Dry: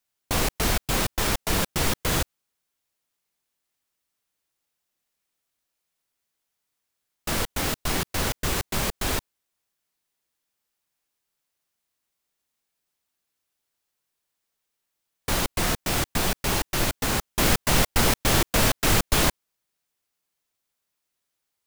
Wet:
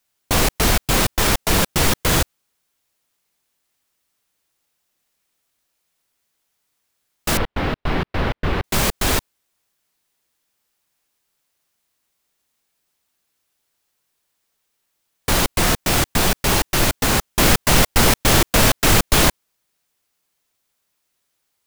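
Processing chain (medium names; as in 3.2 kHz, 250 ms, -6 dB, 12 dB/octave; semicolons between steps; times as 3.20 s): in parallel at -4.5 dB: overload inside the chain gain 23 dB; 7.37–8.64 s: on the sum: distance through air 380 m; trim +4 dB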